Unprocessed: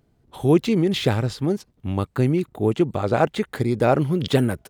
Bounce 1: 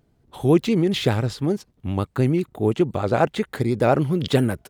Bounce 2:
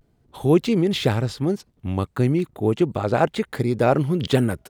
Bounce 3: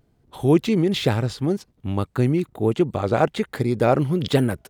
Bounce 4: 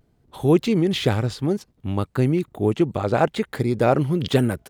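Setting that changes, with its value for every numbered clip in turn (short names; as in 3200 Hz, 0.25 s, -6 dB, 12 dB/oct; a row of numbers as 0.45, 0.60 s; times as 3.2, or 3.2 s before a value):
vibrato, rate: 10, 0.38, 1.2, 0.66 Hz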